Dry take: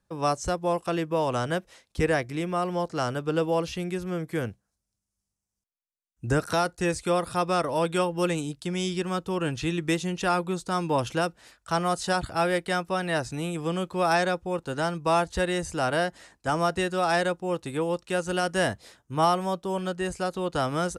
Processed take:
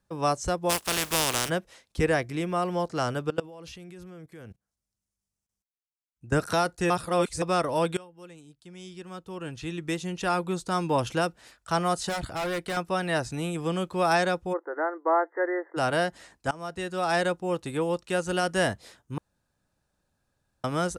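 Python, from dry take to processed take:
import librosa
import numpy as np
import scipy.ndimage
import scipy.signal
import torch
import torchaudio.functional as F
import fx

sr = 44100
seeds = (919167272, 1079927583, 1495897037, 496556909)

y = fx.spec_flatten(x, sr, power=0.29, at=(0.69, 1.48), fade=0.02)
y = fx.level_steps(y, sr, step_db=22, at=(3.3, 6.33))
y = fx.overload_stage(y, sr, gain_db=27.5, at=(12.09, 12.77))
y = fx.brickwall_bandpass(y, sr, low_hz=290.0, high_hz=2100.0, at=(14.52, 15.76), fade=0.02)
y = fx.edit(y, sr, fx.reverse_span(start_s=6.9, length_s=0.52),
    fx.fade_in_from(start_s=7.97, length_s=2.61, curve='qua', floor_db=-22.5),
    fx.fade_in_from(start_s=16.51, length_s=0.73, floor_db=-21.0),
    fx.room_tone_fill(start_s=19.18, length_s=1.46), tone=tone)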